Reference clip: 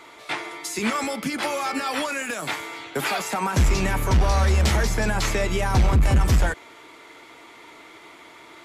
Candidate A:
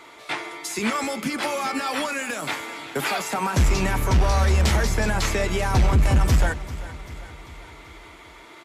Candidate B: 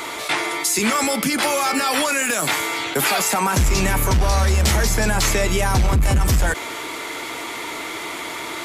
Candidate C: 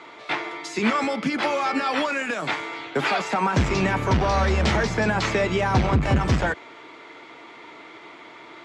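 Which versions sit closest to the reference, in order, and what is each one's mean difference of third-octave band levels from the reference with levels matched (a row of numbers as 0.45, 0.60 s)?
A, C, B; 1.5, 4.0, 6.0 dB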